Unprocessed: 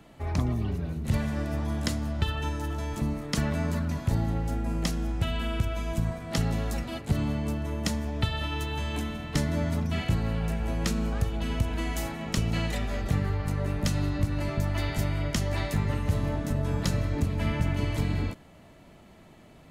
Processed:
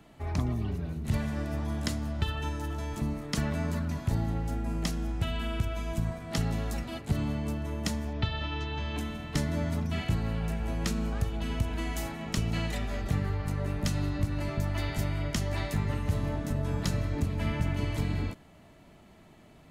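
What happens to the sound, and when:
0:08.13–0:08.98: low-pass filter 5,400 Hz 24 dB per octave
whole clip: notch filter 520 Hz, Q 12; level −2.5 dB

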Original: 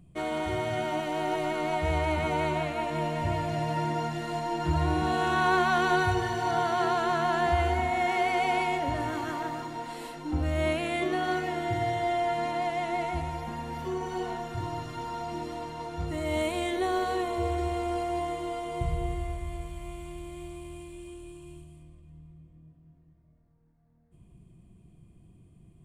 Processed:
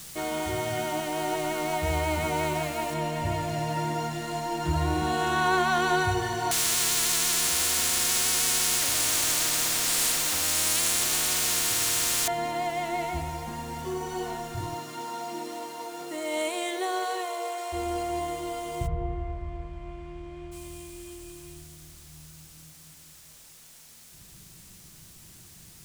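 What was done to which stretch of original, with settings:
0:02.94: noise floor change −47 dB −55 dB
0:06.51–0:12.28: every bin compressed towards the loudest bin 10 to 1
0:14.74–0:17.72: high-pass filter 160 Hz → 550 Hz 24 dB per octave
0:18.86–0:20.51: low-pass filter 1,400 Hz → 2,300 Hz
whole clip: parametric band 7,600 Hz +7 dB 1.7 octaves

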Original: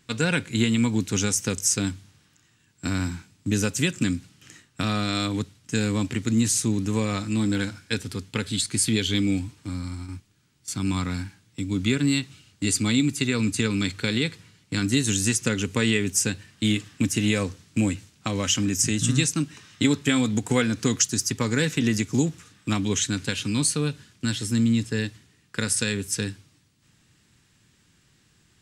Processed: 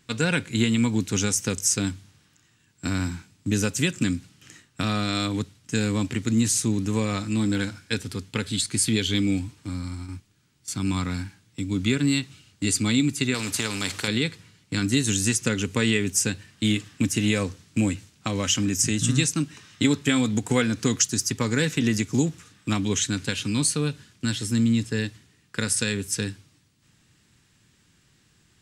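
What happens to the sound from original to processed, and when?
0:13.34–0:14.08: every bin compressed towards the loudest bin 2 to 1

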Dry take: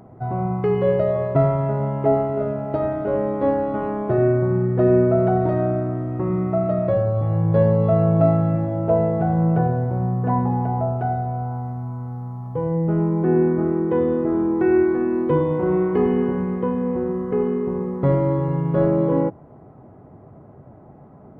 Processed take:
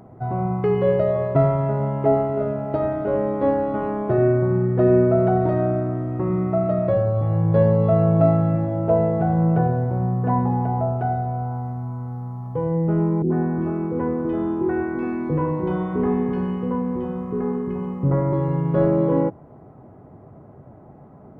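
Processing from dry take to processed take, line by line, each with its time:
0:13.22–0:18.33: three-band delay without the direct sound lows, mids, highs 80/380 ms, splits 420/2,100 Hz

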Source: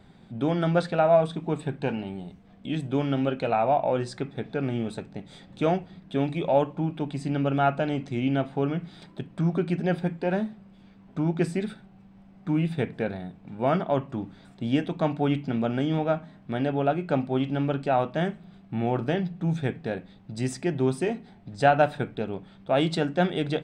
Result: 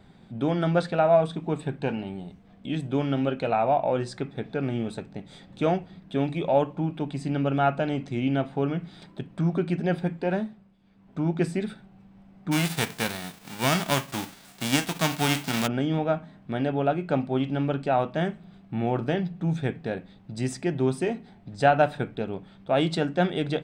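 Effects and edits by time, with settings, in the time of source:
0:10.32–0:11.27: duck −12 dB, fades 0.46 s
0:12.51–0:15.66: spectral envelope flattened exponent 0.3

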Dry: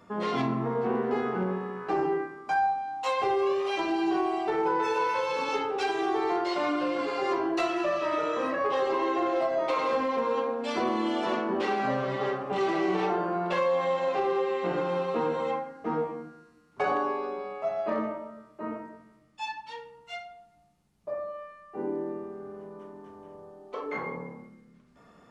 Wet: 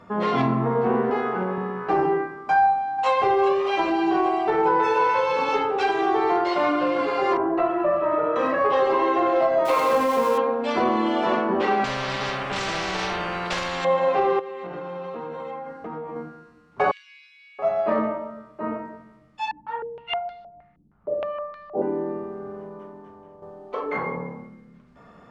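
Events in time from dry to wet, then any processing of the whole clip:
0:01.10–0:01.58: low-shelf EQ 220 Hz −11 dB
0:02.58–0:03.09: delay throw 400 ms, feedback 70%, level −11.5 dB
0:07.37–0:08.36: low-pass filter 1,300 Hz
0:09.65–0:10.38: spike at every zero crossing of −26 dBFS
0:11.84–0:13.85: every bin compressed towards the loudest bin 4 to 1
0:14.39–0:16.16: downward compressor 8 to 1, threshold −37 dBFS
0:16.91–0:17.59: Butterworth high-pass 2,200 Hz 48 dB per octave
0:19.51–0:21.82: low-pass on a step sequencer 6.4 Hz 290–4,200 Hz
0:22.52–0:23.42: fade out, to −8.5 dB
whole clip: low-pass filter 2,100 Hz 6 dB per octave; parametric band 320 Hz −4 dB 1 octave; level +8.5 dB

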